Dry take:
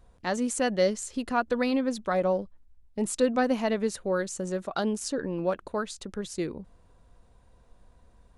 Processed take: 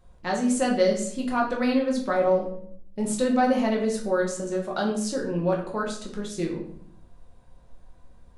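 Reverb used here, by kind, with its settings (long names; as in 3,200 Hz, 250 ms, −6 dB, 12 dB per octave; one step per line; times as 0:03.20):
rectangular room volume 110 cubic metres, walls mixed, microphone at 0.96 metres
level −1.5 dB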